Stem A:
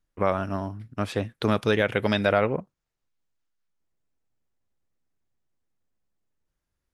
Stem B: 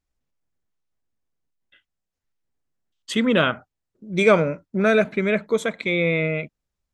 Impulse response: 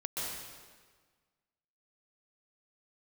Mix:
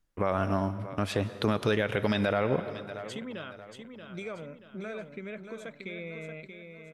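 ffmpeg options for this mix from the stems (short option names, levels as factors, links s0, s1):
-filter_complex "[0:a]volume=1.12,asplit=3[s0][s1][s2];[s1]volume=0.126[s3];[s2]volume=0.1[s4];[1:a]acompressor=threshold=0.0631:ratio=4,volume=0.211,asplit=2[s5][s6];[s6]volume=0.422[s7];[2:a]atrim=start_sample=2205[s8];[s3][s8]afir=irnorm=-1:irlink=0[s9];[s4][s7]amix=inputs=2:normalize=0,aecho=0:1:631|1262|1893|2524|3155|3786:1|0.41|0.168|0.0689|0.0283|0.0116[s10];[s0][s5][s9][s10]amix=inputs=4:normalize=0,alimiter=limit=0.188:level=0:latency=1:release=99"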